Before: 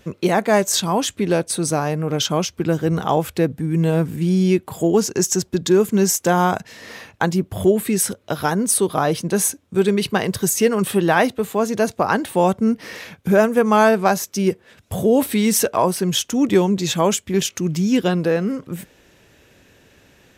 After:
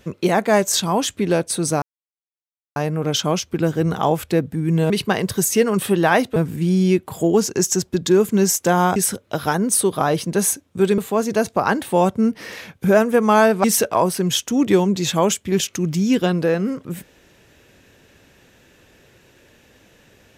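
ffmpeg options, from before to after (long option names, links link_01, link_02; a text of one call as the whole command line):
ffmpeg -i in.wav -filter_complex "[0:a]asplit=7[link_01][link_02][link_03][link_04][link_05][link_06][link_07];[link_01]atrim=end=1.82,asetpts=PTS-STARTPTS,afade=type=out:start_time=1.816:duration=0.004:curve=hsin,apad=pad_dur=0.94[link_08];[link_02]atrim=start=1.82:end=3.962,asetpts=PTS-STARTPTS,afade=type=in:duration=0.004:curve=hsin[link_09];[link_03]atrim=start=9.948:end=11.412[link_10];[link_04]atrim=start=3.958:end=6.562[link_11];[link_05]atrim=start=7.928:end=9.952[link_12];[link_06]atrim=start=11.408:end=14.072[link_13];[link_07]atrim=start=15.458[link_14];[link_08][link_09]concat=n=2:v=0:a=1[link_15];[link_15][link_10]acrossfade=duration=0.004:curve1=hsin:curve2=hsin[link_16];[link_16][link_11]acrossfade=duration=0.004:curve1=hsin:curve2=hsin[link_17];[link_17][link_12]acrossfade=duration=0.004:curve1=hsin:curve2=hsin[link_18];[link_18][link_13]acrossfade=duration=0.004:curve1=hsin:curve2=hsin[link_19];[link_19][link_14]acrossfade=duration=0.004:curve1=hsin:curve2=hsin" out.wav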